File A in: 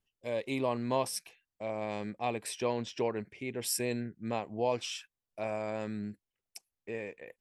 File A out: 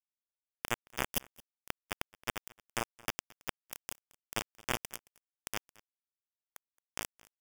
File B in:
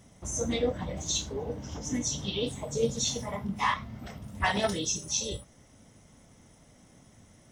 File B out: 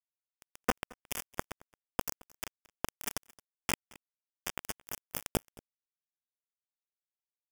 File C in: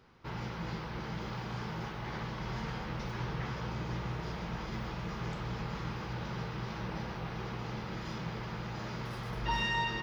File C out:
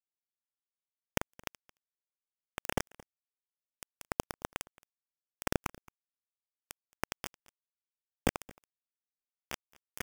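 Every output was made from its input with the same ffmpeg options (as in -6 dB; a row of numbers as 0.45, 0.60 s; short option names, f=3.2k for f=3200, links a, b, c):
-af "equalizer=f=130:t=o:w=1:g=7,areverse,acompressor=threshold=-37dB:ratio=20,areverse,flanger=delay=0.4:depth=7:regen=36:speed=0.36:shape=triangular,aeval=exprs='abs(val(0))':c=same,acrusher=bits=3:dc=4:mix=0:aa=0.000001,aeval=exprs='val(0)*sin(2*PI*230*n/s)':c=same,asuperstop=centerf=4100:order=4:qfactor=2.9,aecho=1:1:221:0.0668,volume=16.5dB"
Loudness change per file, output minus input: -5.0, -8.5, -1.5 LU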